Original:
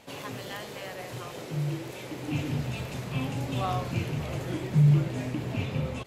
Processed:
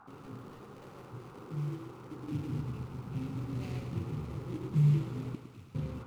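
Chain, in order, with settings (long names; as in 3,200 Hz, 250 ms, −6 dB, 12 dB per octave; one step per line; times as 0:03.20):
running median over 41 samples
flat-topped bell 950 Hz −13 dB
noise in a band 720–1,400 Hz −52 dBFS
0:05.35–0:05.75: guitar amp tone stack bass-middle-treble 5-5-5
feedback echo with a high-pass in the loop 108 ms, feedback 62%, high-pass 200 Hz, level −8 dB
level −5.5 dB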